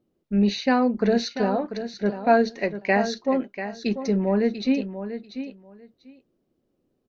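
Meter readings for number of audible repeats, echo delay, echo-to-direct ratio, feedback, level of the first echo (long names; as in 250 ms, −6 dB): 2, 691 ms, −10.5 dB, 16%, −10.5 dB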